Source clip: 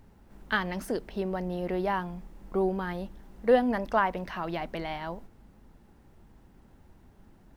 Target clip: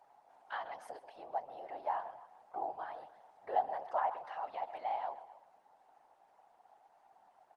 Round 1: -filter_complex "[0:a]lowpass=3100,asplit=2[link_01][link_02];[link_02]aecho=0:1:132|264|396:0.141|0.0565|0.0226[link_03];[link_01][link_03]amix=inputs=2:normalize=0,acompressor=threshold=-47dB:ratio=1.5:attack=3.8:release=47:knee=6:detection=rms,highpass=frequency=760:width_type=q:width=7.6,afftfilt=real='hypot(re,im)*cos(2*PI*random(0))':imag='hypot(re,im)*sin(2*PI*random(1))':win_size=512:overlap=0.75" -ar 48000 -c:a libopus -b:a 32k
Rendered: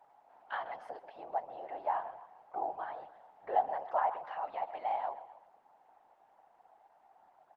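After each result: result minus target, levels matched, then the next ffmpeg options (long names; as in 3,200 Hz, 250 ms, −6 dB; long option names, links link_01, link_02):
downward compressor: peak gain reduction −2.5 dB; 4,000 Hz band −2.5 dB
-filter_complex "[0:a]lowpass=3100,asplit=2[link_01][link_02];[link_02]aecho=0:1:132|264|396:0.141|0.0565|0.0226[link_03];[link_01][link_03]amix=inputs=2:normalize=0,acompressor=threshold=-55dB:ratio=1.5:attack=3.8:release=47:knee=6:detection=rms,highpass=frequency=760:width_type=q:width=7.6,afftfilt=real='hypot(re,im)*cos(2*PI*random(0))':imag='hypot(re,im)*sin(2*PI*random(1))':win_size=512:overlap=0.75" -ar 48000 -c:a libopus -b:a 32k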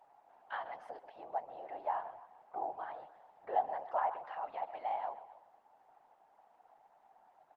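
4,000 Hz band −3.0 dB
-filter_complex "[0:a]lowpass=8300,asplit=2[link_01][link_02];[link_02]aecho=0:1:132|264|396:0.141|0.0565|0.0226[link_03];[link_01][link_03]amix=inputs=2:normalize=0,acompressor=threshold=-55dB:ratio=1.5:attack=3.8:release=47:knee=6:detection=rms,highpass=frequency=760:width_type=q:width=7.6,afftfilt=real='hypot(re,im)*cos(2*PI*random(0))':imag='hypot(re,im)*sin(2*PI*random(1))':win_size=512:overlap=0.75" -ar 48000 -c:a libopus -b:a 32k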